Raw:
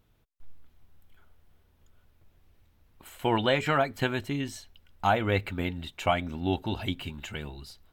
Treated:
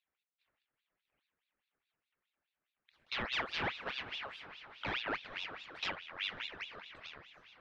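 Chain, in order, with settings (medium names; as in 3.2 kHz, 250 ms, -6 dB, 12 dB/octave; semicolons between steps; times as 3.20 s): companding laws mixed up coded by A; high-pass 520 Hz 12 dB/octave; peaking EQ 2.9 kHz -14 dB 2.2 oct; wavefolder -28.5 dBFS; echo that smears into a reverb 508 ms, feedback 40%, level -11 dB; on a send at -14.5 dB: reverberation RT60 0.80 s, pre-delay 4 ms; on the sum: speed mistake 24 fps film run at 25 fps; tape spacing loss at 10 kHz 42 dB; ring modulator with a swept carrier 2 kHz, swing 60%, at 4.8 Hz; trim +4.5 dB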